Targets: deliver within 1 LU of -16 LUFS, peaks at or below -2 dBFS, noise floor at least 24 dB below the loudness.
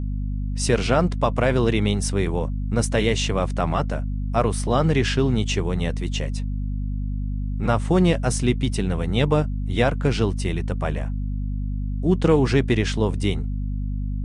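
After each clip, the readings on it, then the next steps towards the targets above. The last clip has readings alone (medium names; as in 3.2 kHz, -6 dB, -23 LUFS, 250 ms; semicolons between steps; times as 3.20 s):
hum 50 Hz; highest harmonic 250 Hz; hum level -23 dBFS; loudness -23.0 LUFS; peak level -5.0 dBFS; loudness target -16.0 LUFS
-> de-hum 50 Hz, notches 5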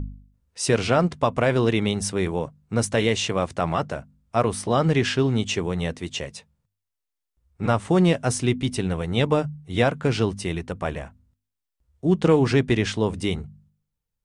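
hum not found; loudness -23.5 LUFS; peak level -6.5 dBFS; loudness target -16.0 LUFS
-> trim +7.5 dB; peak limiter -2 dBFS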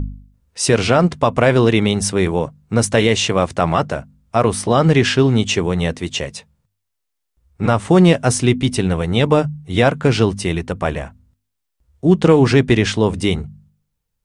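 loudness -16.5 LUFS; peak level -2.0 dBFS; noise floor -76 dBFS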